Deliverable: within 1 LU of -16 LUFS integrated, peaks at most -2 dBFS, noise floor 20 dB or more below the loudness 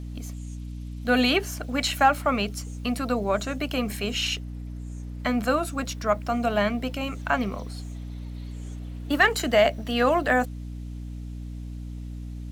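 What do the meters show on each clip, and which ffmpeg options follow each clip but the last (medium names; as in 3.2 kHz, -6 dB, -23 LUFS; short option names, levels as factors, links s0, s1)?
hum 60 Hz; highest harmonic 300 Hz; hum level -33 dBFS; loudness -25.0 LUFS; peak level -8.5 dBFS; loudness target -16.0 LUFS
-> -af "bandreject=f=60:t=h:w=4,bandreject=f=120:t=h:w=4,bandreject=f=180:t=h:w=4,bandreject=f=240:t=h:w=4,bandreject=f=300:t=h:w=4"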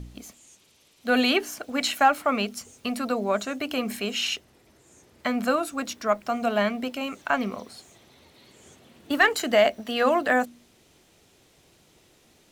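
hum not found; loudness -25.0 LUFS; peak level -8.5 dBFS; loudness target -16.0 LUFS
-> -af "volume=2.82,alimiter=limit=0.794:level=0:latency=1"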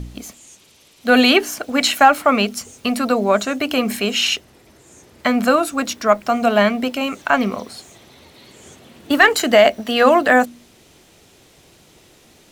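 loudness -16.5 LUFS; peak level -2.0 dBFS; noise floor -51 dBFS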